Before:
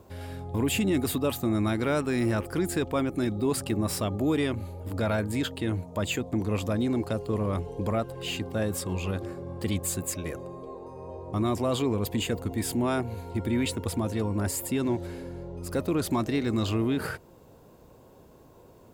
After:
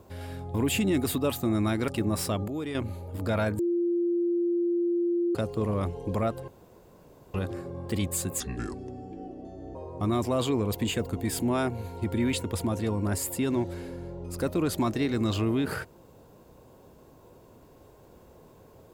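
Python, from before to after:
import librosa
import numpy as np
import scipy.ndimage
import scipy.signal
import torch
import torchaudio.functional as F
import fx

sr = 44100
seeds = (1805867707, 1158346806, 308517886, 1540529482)

y = fx.edit(x, sr, fx.cut(start_s=1.88, length_s=1.72),
    fx.clip_gain(start_s=4.2, length_s=0.27, db=-8.0),
    fx.bleep(start_s=5.31, length_s=1.76, hz=346.0, db=-23.0),
    fx.room_tone_fill(start_s=8.2, length_s=0.86),
    fx.speed_span(start_s=10.12, length_s=0.96, speed=0.71), tone=tone)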